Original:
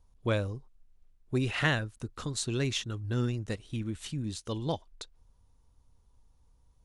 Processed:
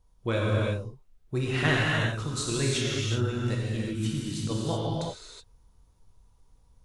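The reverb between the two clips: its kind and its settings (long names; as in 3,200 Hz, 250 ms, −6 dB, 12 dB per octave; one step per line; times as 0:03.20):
reverb whose tail is shaped and stops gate 400 ms flat, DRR −5 dB
level −1 dB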